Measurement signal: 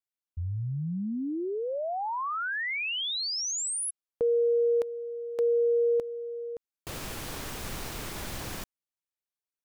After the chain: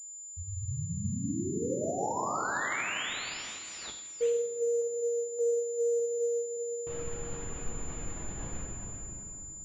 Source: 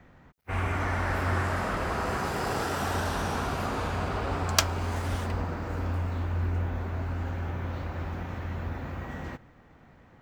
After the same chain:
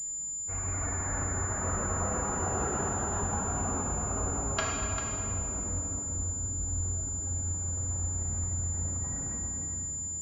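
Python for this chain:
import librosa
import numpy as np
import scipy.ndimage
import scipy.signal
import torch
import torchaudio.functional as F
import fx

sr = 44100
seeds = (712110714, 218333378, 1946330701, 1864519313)

p1 = fx.spec_expand(x, sr, power=1.5)
p2 = fx.dereverb_blind(p1, sr, rt60_s=1.1)
p3 = p2 + fx.echo_single(p2, sr, ms=395, db=-9.0, dry=0)
p4 = fx.room_shoebox(p3, sr, seeds[0], volume_m3=140.0, walls='hard', distance_m=0.71)
p5 = fx.pwm(p4, sr, carrier_hz=7100.0)
y = p5 * 10.0 ** (-7.0 / 20.0)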